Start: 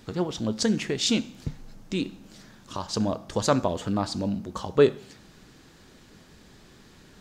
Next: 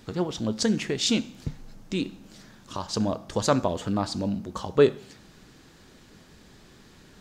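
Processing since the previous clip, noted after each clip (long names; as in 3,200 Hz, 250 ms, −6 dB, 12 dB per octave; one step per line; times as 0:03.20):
no processing that can be heard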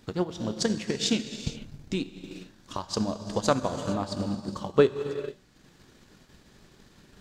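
reverb whose tail is shaped and stops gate 490 ms flat, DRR 4.5 dB
transient designer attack +6 dB, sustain −6 dB
level −5 dB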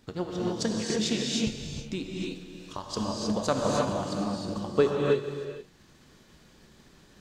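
reverb whose tail is shaped and stops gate 340 ms rising, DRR −2 dB
level −4 dB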